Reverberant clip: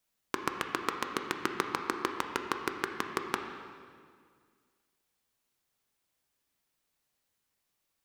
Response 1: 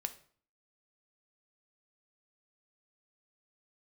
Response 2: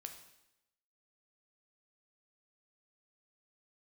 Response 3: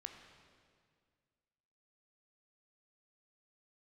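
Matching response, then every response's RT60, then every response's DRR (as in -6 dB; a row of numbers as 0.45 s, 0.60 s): 3; 0.50 s, 0.85 s, 2.0 s; 8.5 dB, 5.0 dB, 4.5 dB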